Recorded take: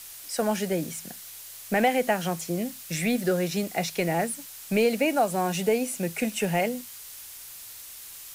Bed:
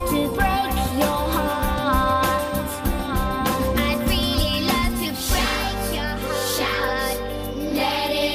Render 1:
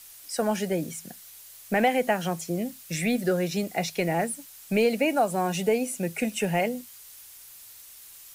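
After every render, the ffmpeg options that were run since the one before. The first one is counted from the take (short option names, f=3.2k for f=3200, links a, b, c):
-af "afftdn=nr=6:nf=-43"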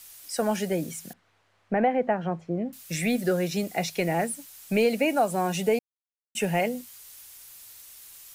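-filter_complex "[0:a]asettb=1/sr,asplit=3[a][b][c];[a]atrim=end=1.134[d];[b]atrim=start=1.13:end=2.73,asetpts=PTS-STARTPTS,afade=t=in:d=0.004:c=qsin,afade=t=out:st=1.596:d=0.004:c=qsin,lowpass=1.4k[e];[c]atrim=start=2.726[f];[d][e]acrossfade=d=0.004:c1=hsin:c2=qsin[g];[g][f]acrossfade=d=0.004:c1=qsin:c2=hsin,asplit=3[h][i][j];[h]atrim=end=5.79,asetpts=PTS-STARTPTS,afade=t=out:st=5.786:d=0.004:c=hsin[k];[i]atrim=start=5.79:end=6.35,asetpts=PTS-STARTPTS,volume=0[l];[j]atrim=start=6.35,asetpts=PTS-STARTPTS,afade=t=in:d=0.004:c=hsin[m];[k][l][m]concat=n=3:v=0:a=1"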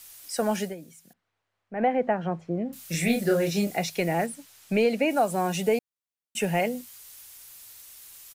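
-filter_complex "[0:a]asplit=3[a][b][c];[a]afade=t=out:st=2.69:d=0.02[d];[b]asplit=2[e][f];[f]adelay=30,volume=-3dB[g];[e][g]amix=inputs=2:normalize=0,afade=t=in:st=2.69:d=0.02,afade=t=out:st=3.76:d=0.02[h];[c]afade=t=in:st=3.76:d=0.02[i];[d][h][i]amix=inputs=3:normalize=0,asettb=1/sr,asplit=3[j][k][l];[j]atrim=end=4.264[m];[k]atrim=start=4.26:end=5.11,asetpts=PTS-STARTPTS,afade=t=in:d=0.004:c=qsin,afade=t=out:st=0.846:d=0.004:c=qsin,highshelf=f=8k:g=-11[n];[l]atrim=start=5.106[o];[m][n]acrossfade=d=0.004:c1=hsin:c2=qsin[p];[p][o]acrossfade=d=0.004:c1=qsin:c2=hsin,asplit=3[q][r][s];[q]atrim=end=0.75,asetpts=PTS-STARTPTS,afade=t=out:st=0.62:d=0.13:silence=0.199526[t];[r]atrim=start=0.75:end=1.73,asetpts=PTS-STARTPTS,volume=-14dB[u];[s]atrim=start=1.73,asetpts=PTS-STARTPTS,afade=t=in:d=0.13:silence=0.199526[v];[t][u][v]concat=n=3:v=0:a=1"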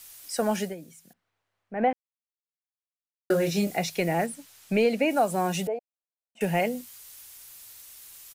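-filter_complex "[0:a]asettb=1/sr,asplit=3[a][b][c];[a]atrim=end=5.674[d];[b]atrim=start=5.67:end=6.41,asetpts=PTS-STARTPTS,afade=t=in:d=0.004:c=qsin,afade=t=out:st=0.736:d=0.004:c=qsin,bandpass=f=660:t=q:w=2.6[e];[c]atrim=start=6.406[f];[d][e]acrossfade=d=0.004:c1=hsin:c2=qsin[g];[g][f]acrossfade=d=0.004:c1=qsin:c2=hsin,asplit=3[h][i][j];[h]atrim=end=1.93,asetpts=PTS-STARTPTS,afade=t=out:st=1.926:d=0.004:c=hsin[k];[i]atrim=start=1.93:end=3.3,asetpts=PTS-STARTPTS,volume=0[l];[j]atrim=start=3.3,asetpts=PTS-STARTPTS,afade=t=in:d=0.004:c=hsin[m];[k][l][m]concat=n=3:v=0:a=1"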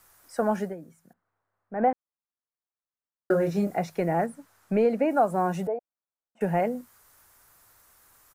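-af "highshelf=f=2k:t=q:w=1.5:g=-12.5"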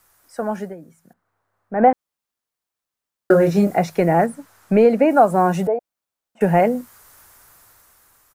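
-af "dynaudnorm=f=330:g=7:m=11dB"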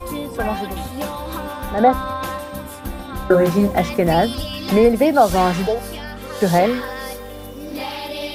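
-filter_complex "[1:a]volume=-6dB[a];[0:a][a]amix=inputs=2:normalize=0"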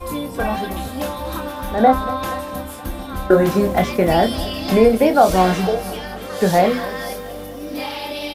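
-filter_complex "[0:a]asplit=2[a][b];[b]adelay=27,volume=-7dB[c];[a][c]amix=inputs=2:normalize=0,aecho=1:1:237|474|711|948|1185|1422:0.15|0.0883|0.0521|0.0307|0.0181|0.0107"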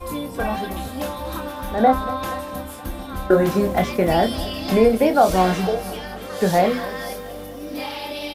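-af "volume=-2.5dB"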